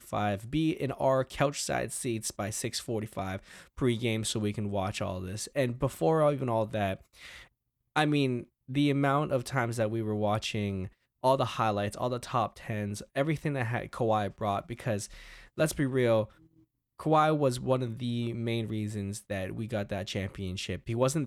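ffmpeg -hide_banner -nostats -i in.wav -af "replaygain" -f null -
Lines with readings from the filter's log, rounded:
track_gain = +10.2 dB
track_peak = 0.188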